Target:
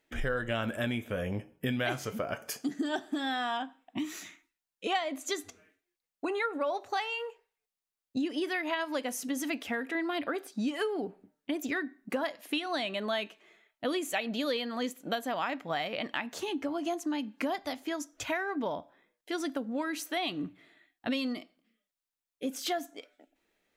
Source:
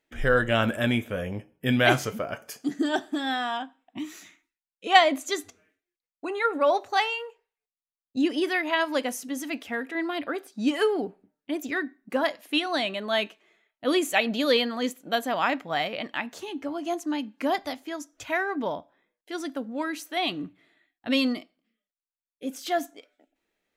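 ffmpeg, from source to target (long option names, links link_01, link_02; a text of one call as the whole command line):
ffmpeg -i in.wav -af "acompressor=threshold=-33dB:ratio=5,volume=3dB" out.wav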